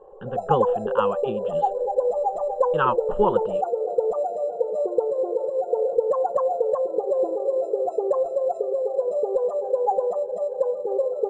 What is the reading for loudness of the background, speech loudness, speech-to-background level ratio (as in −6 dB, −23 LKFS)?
−24.5 LKFS, −26.5 LKFS, −2.0 dB